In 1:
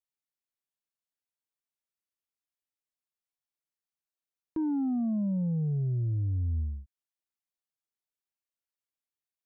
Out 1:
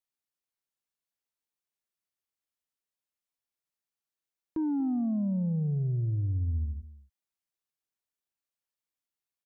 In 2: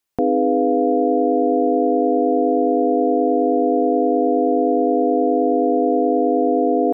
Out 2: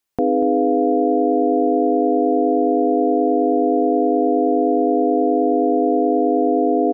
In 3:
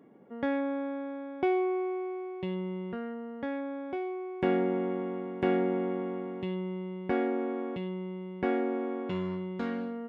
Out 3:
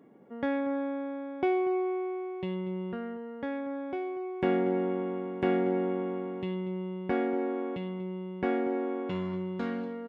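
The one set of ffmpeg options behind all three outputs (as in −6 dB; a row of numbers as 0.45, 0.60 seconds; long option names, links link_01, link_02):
-af "aecho=1:1:238:0.158"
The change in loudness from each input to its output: 0.0, +0.5, +0.5 LU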